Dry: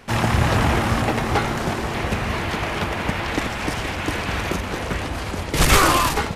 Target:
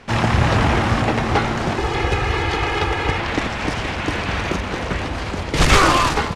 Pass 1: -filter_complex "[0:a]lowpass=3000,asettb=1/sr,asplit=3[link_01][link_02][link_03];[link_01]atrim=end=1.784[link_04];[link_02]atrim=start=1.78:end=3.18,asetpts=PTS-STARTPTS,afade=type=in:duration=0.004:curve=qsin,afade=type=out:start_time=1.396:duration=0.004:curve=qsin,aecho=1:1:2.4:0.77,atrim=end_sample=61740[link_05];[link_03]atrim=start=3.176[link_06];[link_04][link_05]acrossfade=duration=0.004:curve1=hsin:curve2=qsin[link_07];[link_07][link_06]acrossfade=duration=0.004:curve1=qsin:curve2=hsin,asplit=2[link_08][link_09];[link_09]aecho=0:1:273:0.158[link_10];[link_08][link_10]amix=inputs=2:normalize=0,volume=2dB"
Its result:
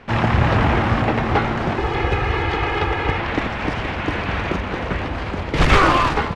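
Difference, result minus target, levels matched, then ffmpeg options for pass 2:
8,000 Hz band −11.0 dB
-filter_complex "[0:a]lowpass=6400,asettb=1/sr,asplit=3[link_01][link_02][link_03];[link_01]atrim=end=1.784[link_04];[link_02]atrim=start=1.78:end=3.18,asetpts=PTS-STARTPTS,afade=type=in:duration=0.004:curve=qsin,afade=type=out:start_time=1.396:duration=0.004:curve=qsin,aecho=1:1:2.4:0.77,atrim=end_sample=61740[link_05];[link_03]atrim=start=3.176[link_06];[link_04][link_05]acrossfade=duration=0.004:curve1=hsin:curve2=qsin[link_07];[link_07][link_06]acrossfade=duration=0.004:curve1=qsin:curve2=hsin,asplit=2[link_08][link_09];[link_09]aecho=0:1:273:0.158[link_10];[link_08][link_10]amix=inputs=2:normalize=0,volume=2dB"

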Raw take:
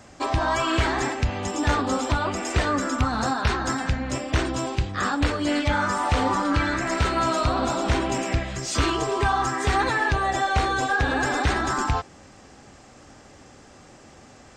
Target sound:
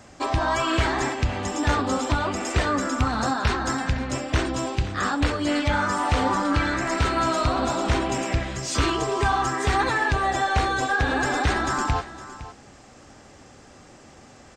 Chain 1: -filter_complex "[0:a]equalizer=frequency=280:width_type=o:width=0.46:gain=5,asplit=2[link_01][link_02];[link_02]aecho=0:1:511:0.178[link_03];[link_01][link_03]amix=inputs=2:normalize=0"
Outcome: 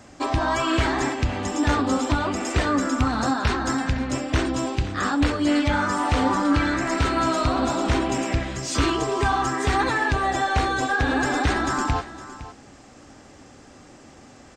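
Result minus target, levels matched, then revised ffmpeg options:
250 Hz band +3.0 dB
-filter_complex "[0:a]asplit=2[link_01][link_02];[link_02]aecho=0:1:511:0.178[link_03];[link_01][link_03]amix=inputs=2:normalize=0"

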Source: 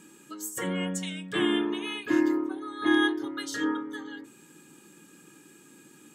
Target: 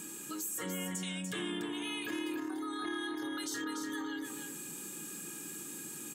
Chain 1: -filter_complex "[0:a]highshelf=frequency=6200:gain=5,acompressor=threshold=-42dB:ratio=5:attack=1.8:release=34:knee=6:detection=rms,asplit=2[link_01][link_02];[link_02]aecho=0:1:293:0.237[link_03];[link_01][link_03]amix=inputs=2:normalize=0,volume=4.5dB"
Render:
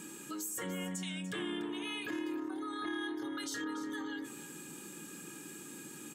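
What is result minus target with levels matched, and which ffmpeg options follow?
echo-to-direct −7 dB; 8,000 Hz band −2.5 dB
-filter_complex "[0:a]highshelf=frequency=6200:gain=14.5,acompressor=threshold=-42dB:ratio=5:attack=1.8:release=34:knee=6:detection=rms,asplit=2[link_01][link_02];[link_02]aecho=0:1:293:0.531[link_03];[link_01][link_03]amix=inputs=2:normalize=0,volume=4.5dB"

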